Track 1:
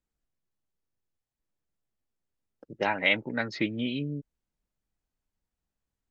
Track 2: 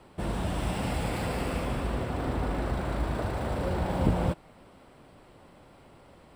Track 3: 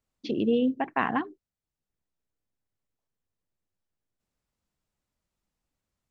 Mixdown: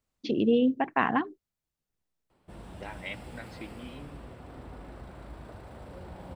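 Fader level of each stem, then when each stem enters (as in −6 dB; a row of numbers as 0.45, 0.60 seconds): −15.0, −15.0, +1.0 decibels; 0.00, 2.30, 0.00 seconds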